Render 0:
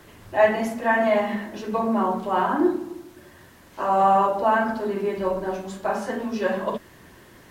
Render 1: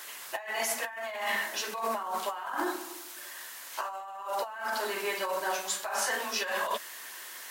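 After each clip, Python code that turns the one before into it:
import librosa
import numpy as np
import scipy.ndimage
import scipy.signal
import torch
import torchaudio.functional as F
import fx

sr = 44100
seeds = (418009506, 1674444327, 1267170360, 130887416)

y = scipy.signal.sosfilt(scipy.signal.butter(2, 970.0, 'highpass', fs=sr, output='sos'), x)
y = fx.high_shelf(y, sr, hz=4000.0, db=11.0)
y = fx.over_compress(y, sr, threshold_db=-34.0, ratio=-1.0)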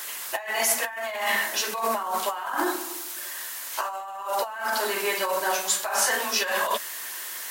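y = fx.high_shelf(x, sr, hz=6600.0, db=6.0)
y = y * librosa.db_to_amplitude(5.5)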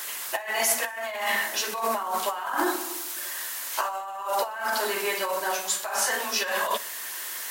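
y = fx.rider(x, sr, range_db=3, speed_s=2.0)
y = fx.echo_feedback(y, sr, ms=60, feedback_pct=57, wet_db=-21.5)
y = y * librosa.db_to_amplitude(-1.0)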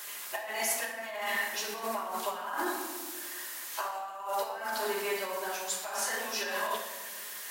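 y = fx.room_shoebox(x, sr, seeds[0], volume_m3=1200.0, walls='mixed', distance_m=1.3)
y = y * librosa.db_to_amplitude(-8.5)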